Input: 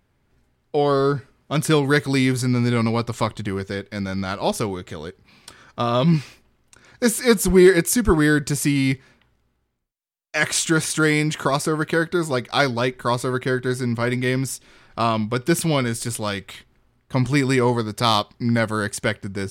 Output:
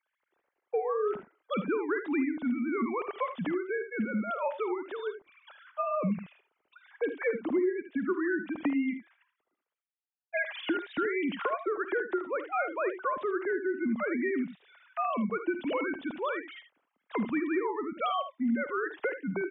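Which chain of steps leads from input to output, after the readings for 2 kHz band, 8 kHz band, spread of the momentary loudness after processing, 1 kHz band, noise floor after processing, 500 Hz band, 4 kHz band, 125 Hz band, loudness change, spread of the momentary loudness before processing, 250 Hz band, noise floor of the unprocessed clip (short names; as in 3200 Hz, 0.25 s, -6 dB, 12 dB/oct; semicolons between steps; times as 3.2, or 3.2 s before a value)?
-10.0 dB, under -40 dB, 6 LU, -8.5 dB, under -85 dBFS, -9.5 dB, -20.0 dB, -23.5 dB, -11.0 dB, 10 LU, -10.0 dB, -67 dBFS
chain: sine-wave speech; compressor 6:1, threshold -28 dBFS, peak gain reduction 24 dB; early reflections 51 ms -15.5 dB, 77 ms -11 dB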